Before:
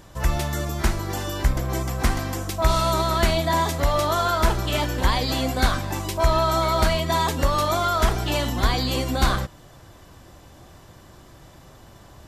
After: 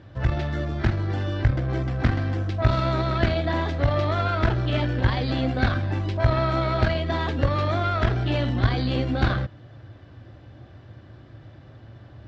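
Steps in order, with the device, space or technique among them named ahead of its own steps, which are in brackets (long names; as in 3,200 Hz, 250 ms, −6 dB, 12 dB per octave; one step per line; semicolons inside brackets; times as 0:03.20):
guitar amplifier (tube saturation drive 11 dB, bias 0.7; bass and treble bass +9 dB, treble −5 dB; loudspeaker in its box 89–4,500 Hz, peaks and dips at 110 Hz +8 dB, 170 Hz −8 dB, 300 Hz +4 dB, 570 Hz +3 dB, 1,000 Hz −6 dB, 1,600 Hz +4 dB)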